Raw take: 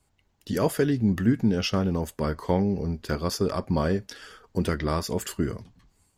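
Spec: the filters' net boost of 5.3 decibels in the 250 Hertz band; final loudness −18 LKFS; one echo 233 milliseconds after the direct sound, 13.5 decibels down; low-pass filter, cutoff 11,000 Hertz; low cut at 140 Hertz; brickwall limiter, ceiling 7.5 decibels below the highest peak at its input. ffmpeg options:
ffmpeg -i in.wav -af "highpass=140,lowpass=11000,equalizer=frequency=250:width_type=o:gain=7.5,alimiter=limit=-13dB:level=0:latency=1,aecho=1:1:233:0.211,volume=7dB" out.wav

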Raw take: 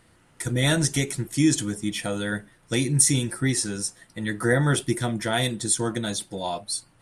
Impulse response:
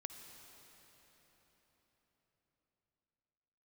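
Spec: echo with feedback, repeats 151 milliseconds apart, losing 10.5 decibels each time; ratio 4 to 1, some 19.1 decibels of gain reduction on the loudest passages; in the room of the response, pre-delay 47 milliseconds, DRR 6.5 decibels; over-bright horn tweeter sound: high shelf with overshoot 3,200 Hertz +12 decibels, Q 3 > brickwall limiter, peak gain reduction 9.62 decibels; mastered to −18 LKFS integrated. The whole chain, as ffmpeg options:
-filter_complex "[0:a]acompressor=threshold=-38dB:ratio=4,aecho=1:1:151|302|453:0.299|0.0896|0.0269,asplit=2[link_01][link_02];[1:a]atrim=start_sample=2205,adelay=47[link_03];[link_02][link_03]afir=irnorm=-1:irlink=0,volume=-3dB[link_04];[link_01][link_04]amix=inputs=2:normalize=0,highshelf=frequency=3200:width_type=q:width=3:gain=12,volume=12.5dB,alimiter=limit=-7.5dB:level=0:latency=1"

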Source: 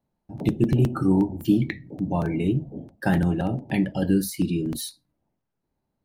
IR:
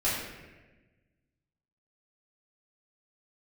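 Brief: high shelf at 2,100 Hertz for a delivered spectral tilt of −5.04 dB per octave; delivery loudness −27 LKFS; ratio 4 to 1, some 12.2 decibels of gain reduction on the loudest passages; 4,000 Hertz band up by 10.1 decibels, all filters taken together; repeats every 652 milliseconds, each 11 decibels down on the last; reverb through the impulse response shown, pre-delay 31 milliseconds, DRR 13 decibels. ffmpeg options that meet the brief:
-filter_complex "[0:a]highshelf=frequency=2100:gain=6.5,equalizer=frequency=4000:width_type=o:gain=6,acompressor=threshold=-30dB:ratio=4,aecho=1:1:652|1304|1956:0.282|0.0789|0.0221,asplit=2[link_01][link_02];[1:a]atrim=start_sample=2205,adelay=31[link_03];[link_02][link_03]afir=irnorm=-1:irlink=0,volume=-23dB[link_04];[link_01][link_04]amix=inputs=2:normalize=0,volume=6dB"

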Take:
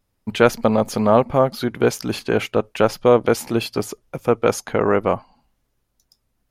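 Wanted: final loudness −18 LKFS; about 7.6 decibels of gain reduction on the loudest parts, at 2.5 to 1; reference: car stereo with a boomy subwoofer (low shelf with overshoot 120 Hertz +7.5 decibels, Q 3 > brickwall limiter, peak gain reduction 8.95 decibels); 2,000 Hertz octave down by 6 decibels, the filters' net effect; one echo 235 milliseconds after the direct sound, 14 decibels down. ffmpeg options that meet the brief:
ffmpeg -i in.wav -af "equalizer=frequency=2000:width_type=o:gain=-9,acompressor=threshold=-21dB:ratio=2.5,lowshelf=frequency=120:width_type=q:width=3:gain=7.5,aecho=1:1:235:0.2,volume=12dB,alimiter=limit=-6.5dB:level=0:latency=1" out.wav

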